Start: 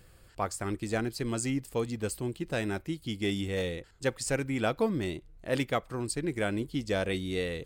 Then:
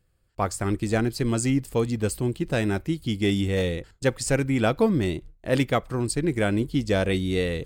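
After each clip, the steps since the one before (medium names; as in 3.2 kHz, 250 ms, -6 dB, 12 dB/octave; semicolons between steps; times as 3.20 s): gate with hold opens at -44 dBFS; bass shelf 280 Hz +5.5 dB; trim +5 dB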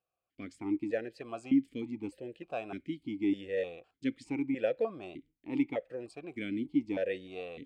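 stepped vowel filter 3.3 Hz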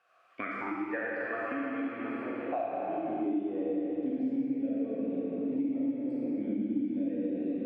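band-pass sweep 1.5 kHz -> 230 Hz, 2.04–3.78 s; algorithmic reverb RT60 4.3 s, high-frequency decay 0.7×, pre-delay 0 ms, DRR -9 dB; three bands compressed up and down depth 100%; trim -2.5 dB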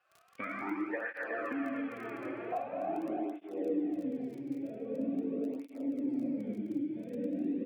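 crackle 16 per s -39 dBFS; delay 278 ms -16 dB; cancelling through-zero flanger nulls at 0.44 Hz, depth 4.5 ms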